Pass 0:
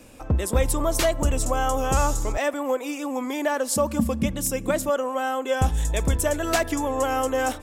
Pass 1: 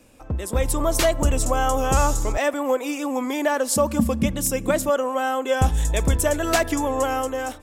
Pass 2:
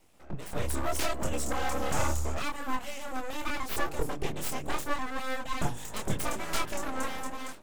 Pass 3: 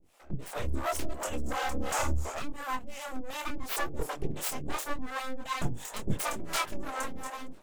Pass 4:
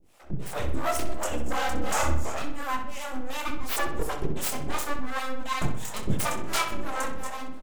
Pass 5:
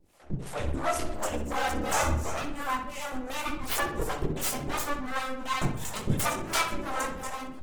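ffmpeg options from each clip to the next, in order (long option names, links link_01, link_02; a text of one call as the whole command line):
ffmpeg -i in.wav -af "dynaudnorm=framelen=110:gausssize=11:maxgain=9.5dB,volume=-5.5dB" out.wav
ffmpeg -i in.wav -af "flanger=delay=22.5:depth=4.9:speed=0.77,aeval=exprs='abs(val(0))':channel_layout=same,volume=-5dB" out.wav
ffmpeg -i in.wav -filter_complex "[0:a]acrossover=split=450[link_01][link_02];[link_01]aeval=exprs='val(0)*(1-1/2+1/2*cos(2*PI*2.8*n/s))':channel_layout=same[link_03];[link_02]aeval=exprs='val(0)*(1-1/2-1/2*cos(2*PI*2.8*n/s))':channel_layout=same[link_04];[link_03][link_04]amix=inputs=2:normalize=0,volume=3dB" out.wav
ffmpeg -i in.wav -filter_complex "[0:a]asplit=2[link_01][link_02];[link_02]adelay=63,lowpass=frequency=4000:poles=1,volume=-7.5dB,asplit=2[link_03][link_04];[link_04]adelay=63,lowpass=frequency=4000:poles=1,volume=0.53,asplit=2[link_05][link_06];[link_06]adelay=63,lowpass=frequency=4000:poles=1,volume=0.53,asplit=2[link_07][link_08];[link_08]adelay=63,lowpass=frequency=4000:poles=1,volume=0.53,asplit=2[link_09][link_10];[link_10]adelay=63,lowpass=frequency=4000:poles=1,volume=0.53,asplit=2[link_11][link_12];[link_12]adelay=63,lowpass=frequency=4000:poles=1,volume=0.53[link_13];[link_01][link_03][link_05][link_07][link_09][link_11][link_13]amix=inputs=7:normalize=0,volume=3.5dB" out.wav
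ffmpeg -i in.wav -ar 48000 -c:a libopus -b:a 16k out.opus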